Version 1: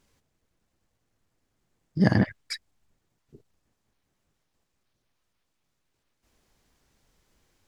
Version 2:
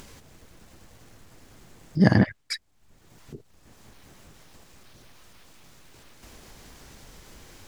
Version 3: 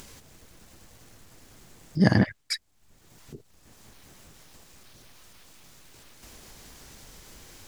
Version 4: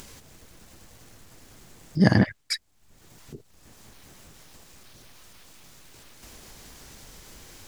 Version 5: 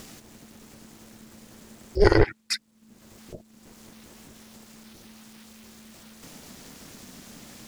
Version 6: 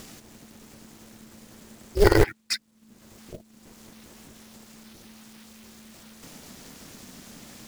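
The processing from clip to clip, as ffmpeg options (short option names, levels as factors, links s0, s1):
-af "acompressor=mode=upward:threshold=0.0178:ratio=2.5,volume=1.41"
-af "highshelf=f=3700:g=6,volume=0.794"
-af "acompressor=mode=upward:threshold=0.00355:ratio=2.5,volume=1.19"
-af "aeval=exprs='val(0)*sin(2*PI*220*n/s)':c=same,volume=1.58"
-af "acrusher=bits=4:mode=log:mix=0:aa=0.000001"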